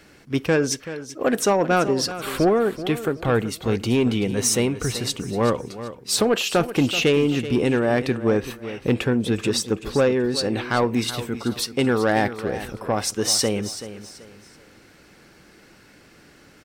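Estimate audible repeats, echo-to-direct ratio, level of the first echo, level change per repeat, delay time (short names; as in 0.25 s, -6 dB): 3, -12.5 dB, -13.0 dB, -10.0 dB, 0.381 s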